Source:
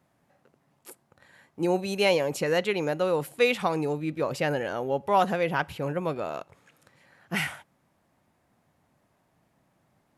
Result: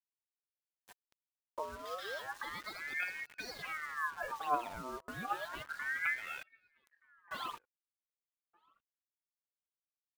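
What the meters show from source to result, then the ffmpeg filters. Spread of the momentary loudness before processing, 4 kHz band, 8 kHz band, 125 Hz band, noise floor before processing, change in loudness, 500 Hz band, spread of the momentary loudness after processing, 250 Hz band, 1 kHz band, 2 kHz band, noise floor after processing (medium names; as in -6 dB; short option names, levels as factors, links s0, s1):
8 LU, -13.0 dB, -12.5 dB, -24.0 dB, -70 dBFS, -12.5 dB, -22.0 dB, 9 LU, -23.0 dB, -9.5 dB, -6.0 dB, under -85 dBFS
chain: -filter_complex "[0:a]aemphasis=mode=reproduction:type=50kf,bandreject=f=60:t=h:w=6,bandreject=f=120:t=h:w=6,bandreject=f=180:t=h:w=6,bandreject=f=240:t=h:w=6,bandreject=f=300:t=h:w=6,afwtdn=0.0126,lowpass=8100,equalizer=f=930:t=o:w=0.55:g=-13,acrossover=split=2000[s0][s1];[s0]acompressor=threshold=0.02:ratio=12[s2];[s2][s1]amix=inputs=2:normalize=0,alimiter=level_in=2.11:limit=0.0631:level=0:latency=1:release=26,volume=0.473,acrossover=split=160[s3][s4];[s4]acompressor=threshold=0.00141:ratio=3[s5];[s3][s5]amix=inputs=2:normalize=0,aphaser=in_gain=1:out_gain=1:delay=4.6:decay=0.76:speed=0.66:type=triangular,acrusher=bits=9:mix=0:aa=0.000001,asplit=2[s6][s7];[s7]adelay=1224,volume=0.0355,highshelf=f=4000:g=-27.6[s8];[s6][s8]amix=inputs=2:normalize=0,aeval=exprs='val(0)*sin(2*PI*1400*n/s+1400*0.45/0.31*sin(2*PI*0.31*n/s))':c=same,volume=2.82"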